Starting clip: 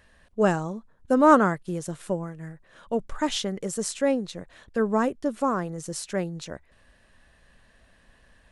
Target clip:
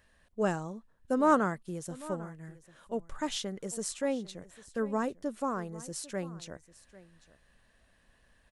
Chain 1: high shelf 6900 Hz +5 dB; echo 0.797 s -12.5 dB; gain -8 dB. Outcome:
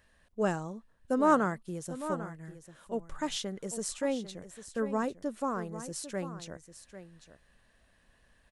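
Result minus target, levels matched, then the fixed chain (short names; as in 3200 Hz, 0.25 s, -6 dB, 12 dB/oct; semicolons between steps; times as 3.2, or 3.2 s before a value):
echo-to-direct +6.5 dB
high shelf 6900 Hz +5 dB; echo 0.797 s -19 dB; gain -8 dB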